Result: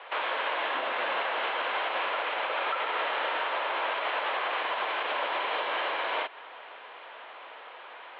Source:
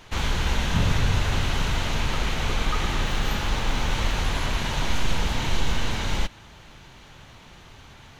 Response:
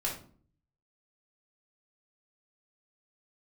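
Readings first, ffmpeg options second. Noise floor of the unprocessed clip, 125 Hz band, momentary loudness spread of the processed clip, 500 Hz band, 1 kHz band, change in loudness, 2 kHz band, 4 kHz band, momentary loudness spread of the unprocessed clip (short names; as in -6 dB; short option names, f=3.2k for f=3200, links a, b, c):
-48 dBFS, under -40 dB, 16 LU, +1.5 dB, +3.0 dB, -3.0 dB, +0.5 dB, -5.0 dB, 4 LU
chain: -af "highpass=f=450:t=q:w=0.5412,highpass=f=450:t=q:w=1.307,lowpass=f=3.3k:t=q:w=0.5176,lowpass=f=3.3k:t=q:w=0.7071,lowpass=f=3.3k:t=q:w=1.932,afreqshift=94,aemphasis=mode=reproduction:type=riaa,alimiter=level_in=4dB:limit=-24dB:level=0:latency=1:release=168,volume=-4dB,acontrast=89"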